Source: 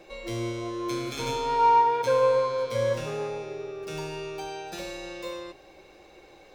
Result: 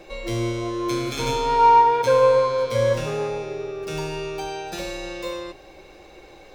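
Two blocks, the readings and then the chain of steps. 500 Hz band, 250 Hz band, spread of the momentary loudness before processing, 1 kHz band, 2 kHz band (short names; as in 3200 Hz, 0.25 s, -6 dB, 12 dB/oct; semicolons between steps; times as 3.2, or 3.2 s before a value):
+5.5 dB, +6.0 dB, 16 LU, +5.5 dB, +5.5 dB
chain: low shelf 70 Hz +7 dB; gain +5.5 dB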